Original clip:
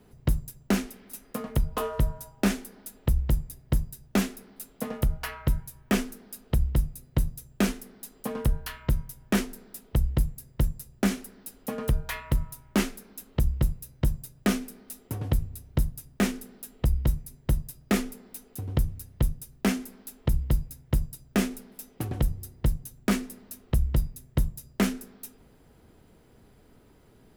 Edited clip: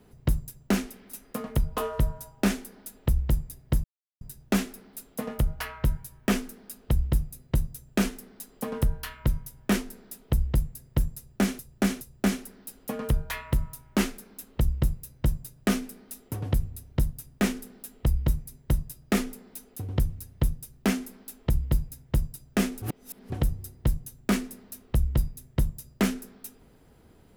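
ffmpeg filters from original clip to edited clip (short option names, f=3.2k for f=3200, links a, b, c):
-filter_complex "[0:a]asplit=6[a][b][c][d][e][f];[a]atrim=end=3.84,asetpts=PTS-STARTPTS,afade=t=out:st=3.836:d=0.004:c=hsin,apad=pad_dur=0.37[g];[b]atrim=start=3.84:end=11.222,asetpts=PTS-STARTPTS,afade=t=in:d=0.004:c=hsin[h];[c]atrim=start=10.798:end=11.222[i];[d]atrim=start=10.798:end=21.612[j];[e]atrim=start=21.608:end=22.092,asetpts=PTS-STARTPTS,areverse[k];[f]atrim=start=22.088[l];[g][h]concat=n=2:v=0:a=1[m];[m][i]acrossfade=d=0.004:c1=hsin:c2=hsin[n];[n][j]acrossfade=d=0.004:c1=hsin:c2=hsin[o];[o][k]acrossfade=d=0.004:c1=hsin:c2=hsin[p];[p][l]acrossfade=d=0.004:c1=hsin:c2=hsin"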